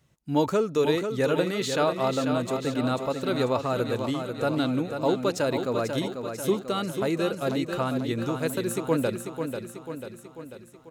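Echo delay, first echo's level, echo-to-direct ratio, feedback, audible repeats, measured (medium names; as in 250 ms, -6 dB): 492 ms, -7.0 dB, -5.5 dB, 56%, 6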